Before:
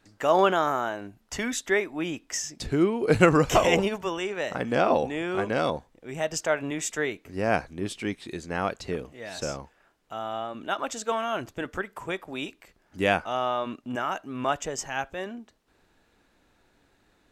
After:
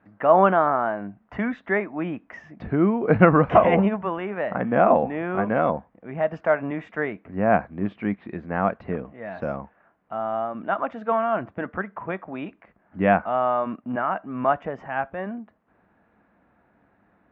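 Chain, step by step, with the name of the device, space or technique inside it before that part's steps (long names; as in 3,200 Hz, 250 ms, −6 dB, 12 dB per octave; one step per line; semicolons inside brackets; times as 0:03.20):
bass cabinet (loudspeaker in its box 69–2,000 Hz, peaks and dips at 200 Hz +8 dB, 390 Hz −4 dB, 680 Hz +5 dB, 1,100 Hz +3 dB)
level +2.5 dB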